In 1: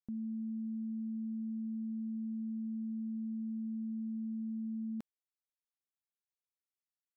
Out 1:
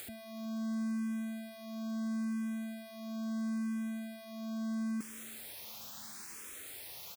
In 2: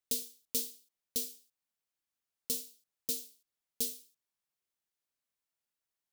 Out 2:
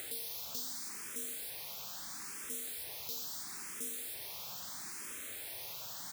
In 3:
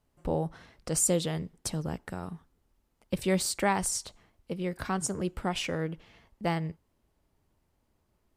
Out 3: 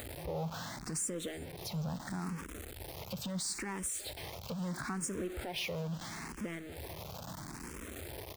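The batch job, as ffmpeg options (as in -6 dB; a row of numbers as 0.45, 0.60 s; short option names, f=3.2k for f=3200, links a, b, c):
-filter_complex "[0:a]aeval=exprs='val(0)+0.5*0.0188*sgn(val(0))':c=same,highpass=59,bandreject=f=2.9k:w=18,alimiter=level_in=0.5dB:limit=-24dB:level=0:latency=1:release=146,volume=-0.5dB,acompressor=mode=upward:threshold=-39dB:ratio=2.5,asoftclip=type=tanh:threshold=-28dB,asplit=2[a][b];[b]aecho=0:1:370|740|1110|1480:0.0944|0.0529|0.0296|0.0166[c];[a][c]amix=inputs=2:normalize=0,asplit=2[d][e];[e]afreqshift=0.75[f];[d][f]amix=inputs=2:normalize=1"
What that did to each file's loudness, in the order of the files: 0.0, -4.0, -8.5 LU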